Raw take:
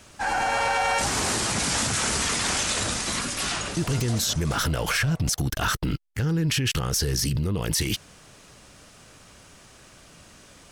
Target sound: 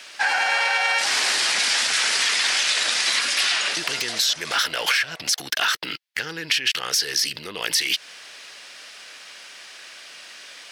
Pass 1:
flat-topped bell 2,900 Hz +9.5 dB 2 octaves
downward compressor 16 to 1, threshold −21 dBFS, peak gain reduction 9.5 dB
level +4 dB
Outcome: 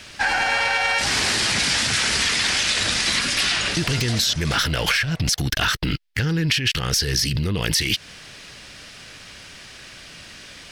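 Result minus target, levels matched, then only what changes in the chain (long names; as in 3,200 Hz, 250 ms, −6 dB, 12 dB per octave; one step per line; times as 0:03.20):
500 Hz band +3.5 dB
add after downward compressor: high-pass filter 560 Hz 12 dB per octave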